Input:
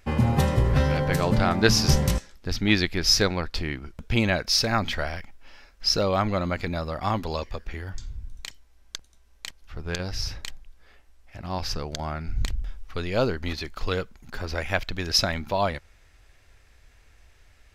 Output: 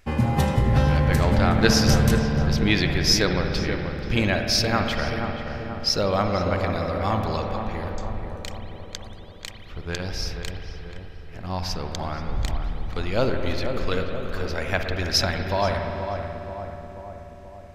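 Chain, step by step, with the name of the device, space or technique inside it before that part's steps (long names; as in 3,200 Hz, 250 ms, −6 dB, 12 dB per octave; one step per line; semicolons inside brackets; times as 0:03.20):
dub delay into a spring reverb (feedback echo with a low-pass in the loop 482 ms, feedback 62%, low-pass 1,400 Hz, level −6.5 dB; spring reverb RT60 3.2 s, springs 55 ms, chirp 65 ms, DRR 4 dB)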